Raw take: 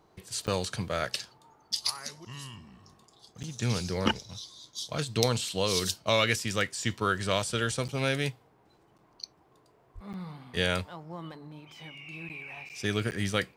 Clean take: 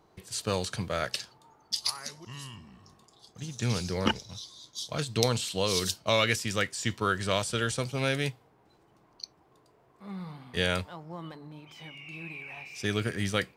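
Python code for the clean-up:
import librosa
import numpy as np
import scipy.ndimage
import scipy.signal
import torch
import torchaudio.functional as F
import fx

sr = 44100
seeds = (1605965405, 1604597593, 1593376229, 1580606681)

y = fx.fix_declip(x, sr, threshold_db=-6.0)
y = fx.fix_deplosive(y, sr, at_s=(9.94,))
y = fx.fix_interpolate(y, sr, at_s=(0.47, 3.43, 7.88, 8.98, 10.13, 12.29, 12.69, 13.11), length_ms=8.4)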